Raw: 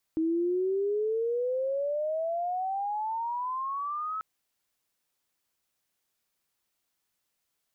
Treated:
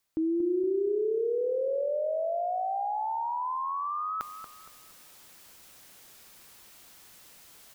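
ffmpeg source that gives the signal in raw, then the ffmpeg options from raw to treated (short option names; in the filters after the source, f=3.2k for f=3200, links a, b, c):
-f lavfi -i "aevalsrc='pow(10,(-24-6.5*t/4.04)/20)*sin(2*PI*317*4.04/(24.5*log(2)/12)*(exp(24.5*log(2)/12*t/4.04)-1))':d=4.04:s=44100"
-filter_complex "[0:a]areverse,acompressor=mode=upward:threshold=-32dB:ratio=2.5,areverse,asplit=2[a][b];[b]adelay=233,lowpass=f=1.2k:p=1,volume=-8dB,asplit=2[c][d];[d]adelay=233,lowpass=f=1.2k:p=1,volume=0.48,asplit=2[e][f];[f]adelay=233,lowpass=f=1.2k:p=1,volume=0.48,asplit=2[g][h];[h]adelay=233,lowpass=f=1.2k:p=1,volume=0.48,asplit=2[i][j];[j]adelay=233,lowpass=f=1.2k:p=1,volume=0.48,asplit=2[k][l];[l]adelay=233,lowpass=f=1.2k:p=1,volume=0.48[m];[a][c][e][g][i][k][m]amix=inputs=7:normalize=0"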